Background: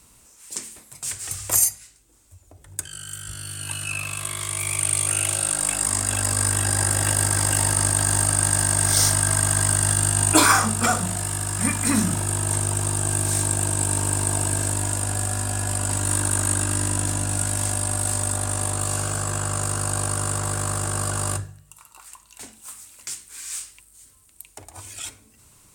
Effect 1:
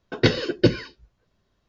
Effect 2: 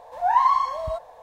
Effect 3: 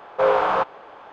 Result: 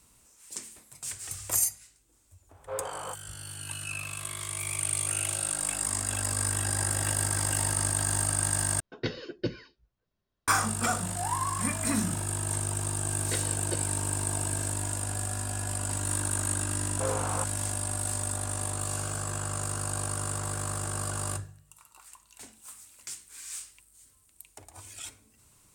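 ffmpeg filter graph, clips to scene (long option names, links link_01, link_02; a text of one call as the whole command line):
ffmpeg -i bed.wav -i cue0.wav -i cue1.wav -i cue2.wav -filter_complex "[3:a]asplit=2[link_01][link_02];[1:a]asplit=2[link_03][link_04];[0:a]volume=-7.5dB[link_05];[link_01]flanger=delay=18.5:depth=7.9:speed=2[link_06];[link_04]highpass=480[link_07];[link_05]asplit=2[link_08][link_09];[link_08]atrim=end=8.804[link_10];[link_03]atrim=end=1.68,asetpts=PTS-STARTPTS,volume=-14dB[link_11];[link_09]atrim=start=10.476[link_12];[link_06]atrim=end=1.12,asetpts=PTS-STARTPTS,volume=-15.5dB,afade=type=in:duration=0.004:curve=hsin,afade=type=out:start_time=1.116:duration=0.004:curve=hsin,adelay=2490[link_13];[2:a]atrim=end=1.22,asetpts=PTS-STARTPTS,volume=-14dB,afade=type=in:duration=0.004:curve=hsin,afade=type=out:start_time=1.216:duration=0.004:curve=hsin,adelay=10960[link_14];[link_07]atrim=end=1.68,asetpts=PTS-STARTPTS,volume=-14dB,afade=type=in:duration=0.004:curve=hsin,afade=type=out:start_time=1.676:duration=0.004:curve=hsin,adelay=13080[link_15];[link_02]atrim=end=1.12,asetpts=PTS-STARTPTS,volume=-14.5dB,afade=type=in:duration=0.004:curve=hsin,afade=type=out:start_time=1.116:duration=0.004:curve=hsin,adelay=16810[link_16];[link_10][link_11]acrossfade=duration=0.004:curve1=hsin:curve2=hsin[link_17];[link_17][link_12]acrossfade=duration=0.004:curve1=hsin:curve2=hsin[link_18];[link_18][link_13][link_14][link_15][link_16]amix=inputs=5:normalize=0" out.wav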